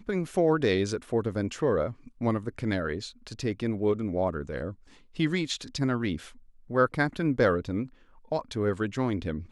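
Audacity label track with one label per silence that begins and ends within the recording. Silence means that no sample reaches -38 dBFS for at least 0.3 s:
4.730000	5.170000	silence
6.280000	6.700000	silence
7.860000	8.320000	silence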